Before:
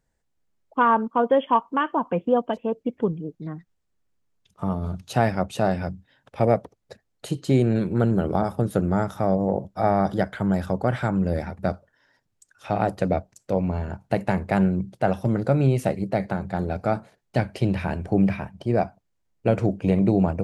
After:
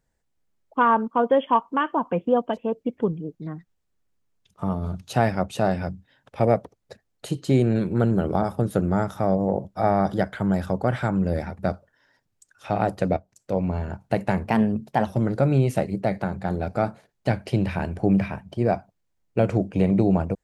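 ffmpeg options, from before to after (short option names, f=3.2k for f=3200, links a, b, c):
-filter_complex "[0:a]asplit=4[a][b][c][d];[a]atrim=end=13.17,asetpts=PTS-STARTPTS,afade=t=out:st=13.166:d=0.004:c=hsin:silence=0.16788[e];[b]atrim=start=13.17:end=14.454,asetpts=PTS-STARTPTS,afade=t=in:d=0.59:c=qsin:silence=0.16788[f];[c]atrim=start=14.45:end=15.15,asetpts=PTS-STARTPTS,asetrate=50274,aresample=44100[g];[d]atrim=start=15.146[h];[e][f]concat=n=2:v=0:a=1[i];[i][g]acrossfade=d=0.004:c1=hsin:c2=hsin[j];[j][h]acrossfade=d=0.004:c1=hsin:c2=hsin"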